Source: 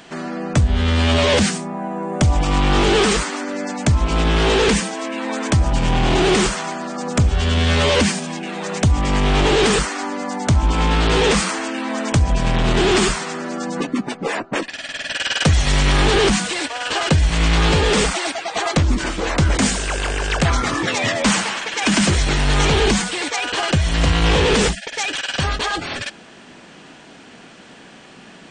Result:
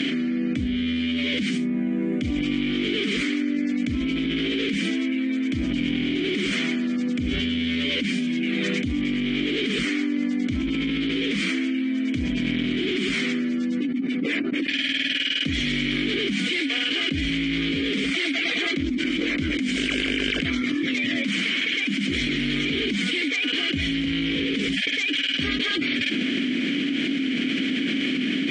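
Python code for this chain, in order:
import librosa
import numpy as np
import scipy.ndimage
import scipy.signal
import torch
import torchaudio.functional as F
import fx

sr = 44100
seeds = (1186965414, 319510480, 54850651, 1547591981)

y = fx.vowel_filter(x, sr, vowel='i')
y = fx.env_flatten(y, sr, amount_pct=100)
y = y * 10.0 ** (-4.5 / 20.0)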